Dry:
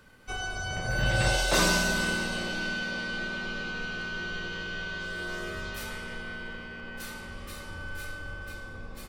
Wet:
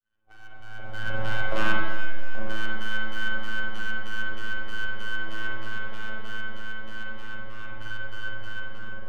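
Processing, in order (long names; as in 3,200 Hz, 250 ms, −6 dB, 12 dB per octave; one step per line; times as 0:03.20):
fade in at the beginning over 2.05 s
auto-filter low-pass square 3.2 Hz 680–1,600 Hz
half-wave rectification
phases set to zero 109 Hz
0:01.76–0:02.35: tuned comb filter 500 Hz, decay 0.38 s, mix 90%
on a send: echo with a time of its own for lows and highs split 430 Hz, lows 82 ms, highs 332 ms, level −15 dB
on the sum: spring reverb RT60 1.4 s, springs 40/45 ms, chirp 50 ms, DRR −3.5 dB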